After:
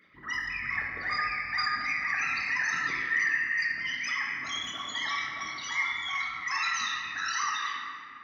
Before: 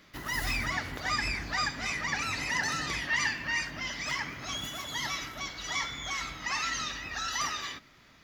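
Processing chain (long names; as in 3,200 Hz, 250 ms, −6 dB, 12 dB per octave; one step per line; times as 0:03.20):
spectral envelope exaggerated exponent 3
high-pass filter 870 Hz 6 dB per octave
convolution reverb RT60 2.3 s, pre-delay 5 ms, DRR −2 dB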